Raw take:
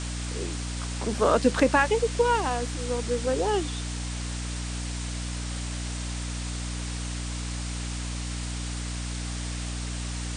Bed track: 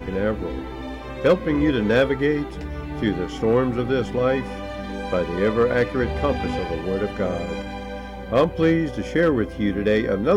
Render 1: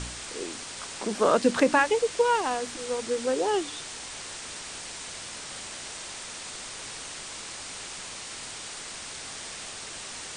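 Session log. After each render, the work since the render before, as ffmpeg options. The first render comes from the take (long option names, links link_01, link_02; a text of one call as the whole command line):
ffmpeg -i in.wav -af "bandreject=frequency=60:width_type=h:width=4,bandreject=frequency=120:width_type=h:width=4,bandreject=frequency=180:width_type=h:width=4,bandreject=frequency=240:width_type=h:width=4,bandreject=frequency=300:width_type=h:width=4" out.wav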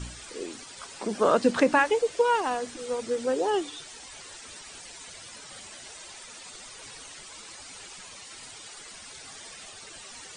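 ffmpeg -i in.wav -af "afftdn=noise_reduction=12:noise_floor=-40" out.wav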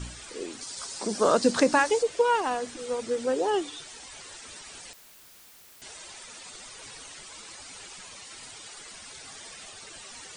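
ffmpeg -i in.wav -filter_complex "[0:a]asettb=1/sr,asplit=3[link_01][link_02][link_03];[link_01]atrim=end=0.614[link_04];[link_02]atrim=start=0.61:end=2.03,asetpts=PTS-STARTPTS,afade=type=in:duration=0.004:curve=qsin,afade=type=out:start_time=1.416:duration=0.004:curve=qsin,highshelf=frequency=3700:width_type=q:width=1.5:gain=6.5[link_05];[link_03]atrim=start=2.026[link_06];[link_04][link_05]acrossfade=duration=0.004:curve1=hsin:curve2=qsin[link_07];[link_07][link_06]acrossfade=duration=0.004:curve1=qsin:curve2=hsin,asettb=1/sr,asplit=3[link_08][link_09][link_10];[link_08]atrim=end=4.934[link_11];[link_09]atrim=start=4.93:end=5.82,asetpts=PTS-STARTPTS,afade=type=in:duration=0.004:curve=qsin,afade=type=out:start_time=0.886:duration=0.004:curve=qsin,aeval=exprs='(mod(251*val(0)+1,2)-1)/251':channel_layout=same[link_12];[link_10]atrim=start=5.816[link_13];[link_11][link_12]acrossfade=duration=0.004:curve1=hsin:curve2=qsin[link_14];[link_14][link_13]acrossfade=duration=0.004:curve1=qsin:curve2=hsin" out.wav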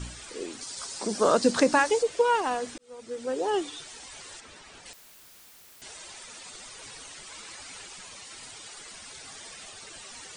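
ffmpeg -i in.wav -filter_complex "[0:a]asettb=1/sr,asplit=3[link_01][link_02][link_03];[link_01]atrim=end=4.404[link_04];[link_02]atrim=start=4.4:end=4.86,asetpts=PTS-STARTPTS,afade=type=in:duration=0.004:curve=qsin,afade=type=out:start_time=0.456:duration=0.004:curve=qsin,lowpass=frequency=2500:poles=1[link_05];[link_03]atrim=start=4.856[link_06];[link_04][link_05]acrossfade=duration=0.004:curve1=hsin:curve2=qsin[link_07];[link_07][link_06]acrossfade=duration=0.004:curve1=qsin:curve2=hsin,asettb=1/sr,asplit=3[link_08][link_09][link_10];[link_08]atrim=end=7.274[link_11];[link_09]atrim=start=7.27:end=7.82,asetpts=PTS-STARTPTS,afade=type=in:duration=0.004:curve=qsin,afade=type=out:start_time=0.546:duration=0.004:curve=qsin,equalizer=frequency=1900:width_type=o:width=1.5:gain=3[link_12];[link_10]atrim=start=7.816[link_13];[link_11][link_12]acrossfade=duration=0.004:curve1=hsin:curve2=qsin[link_14];[link_14][link_13]acrossfade=duration=0.004:curve1=qsin:curve2=hsin,asplit=2[link_15][link_16];[link_15]atrim=end=2.78,asetpts=PTS-STARTPTS,afade=type=out:start_time=2.776:duration=0.004:curve=hsin[link_17];[link_16]atrim=start=2.78,asetpts=PTS-STARTPTS,afade=type=in:duration=0.83[link_18];[link_17][link_18]concat=n=2:v=0:a=1" out.wav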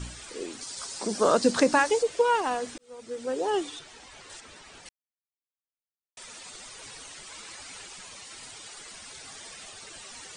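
ffmpeg -i in.wav -filter_complex "[0:a]asettb=1/sr,asplit=3[link_01][link_02][link_03];[link_01]atrim=end=3.794[link_04];[link_02]atrim=start=3.79:end=4.3,asetpts=PTS-STARTPTS,afade=type=in:duration=0.004:curve=qsin,afade=type=out:start_time=0.506:duration=0.004:curve=qsin,lowpass=frequency=2900:poles=1[link_05];[link_03]atrim=start=4.296[link_06];[link_04][link_05]acrossfade=duration=0.004:curve1=hsin:curve2=qsin[link_07];[link_07][link_06]acrossfade=duration=0.004:curve1=qsin:curve2=hsin,asplit=3[link_08][link_09][link_10];[link_08]atrim=end=4.89,asetpts=PTS-STARTPTS,afade=type=out:start_time=4.886:duration=0.004:curve=hsin[link_11];[link_09]atrim=start=4.89:end=6.17,asetpts=PTS-STARTPTS,volume=0[link_12];[link_10]atrim=start=6.17,asetpts=PTS-STARTPTS,afade=type=in:duration=0.004:curve=hsin[link_13];[link_11][link_12][link_13]concat=n=3:v=0:a=1" out.wav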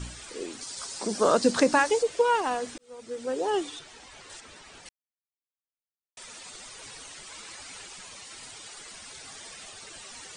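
ffmpeg -i in.wav -af anull out.wav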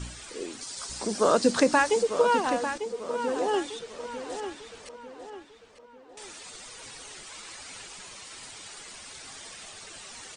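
ffmpeg -i in.wav -filter_complex "[0:a]asplit=2[link_01][link_02];[link_02]adelay=897,lowpass=frequency=4200:poles=1,volume=-9dB,asplit=2[link_03][link_04];[link_04]adelay=897,lowpass=frequency=4200:poles=1,volume=0.43,asplit=2[link_05][link_06];[link_06]adelay=897,lowpass=frequency=4200:poles=1,volume=0.43,asplit=2[link_07][link_08];[link_08]adelay=897,lowpass=frequency=4200:poles=1,volume=0.43,asplit=2[link_09][link_10];[link_10]adelay=897,lowpass=frequency=4200:poles=1,volume=0.43[link_11];[link_01][link_03][link_05][link_07][link_09][link_11]amix=inputs=6:normalize=0" out.wav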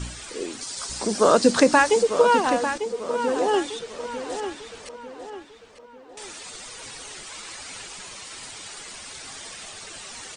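ffmpeg -i in.wav -af "volume=5dB" out.wav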